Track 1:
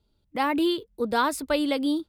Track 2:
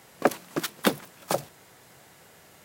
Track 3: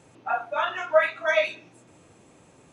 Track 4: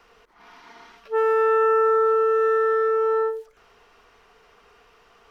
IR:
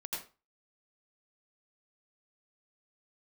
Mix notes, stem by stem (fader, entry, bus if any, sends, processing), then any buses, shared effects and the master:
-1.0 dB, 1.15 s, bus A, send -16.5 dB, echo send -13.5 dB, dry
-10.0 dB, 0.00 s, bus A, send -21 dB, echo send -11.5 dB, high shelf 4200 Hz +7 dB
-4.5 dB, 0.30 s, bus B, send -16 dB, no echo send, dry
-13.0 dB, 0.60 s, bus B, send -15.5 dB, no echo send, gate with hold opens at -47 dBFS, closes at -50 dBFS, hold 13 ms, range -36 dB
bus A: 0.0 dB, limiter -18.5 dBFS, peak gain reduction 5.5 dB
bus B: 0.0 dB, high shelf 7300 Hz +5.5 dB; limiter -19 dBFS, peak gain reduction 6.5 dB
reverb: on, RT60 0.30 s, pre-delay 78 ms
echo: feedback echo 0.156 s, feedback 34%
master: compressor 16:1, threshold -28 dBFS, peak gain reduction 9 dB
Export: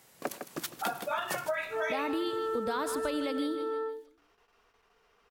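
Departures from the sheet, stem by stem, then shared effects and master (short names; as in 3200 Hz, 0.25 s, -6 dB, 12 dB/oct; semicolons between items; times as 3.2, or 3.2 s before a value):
stem 1: entry 1.15 s -> 1.55 s; stem 3: entry 0.30 s -> 0.55 s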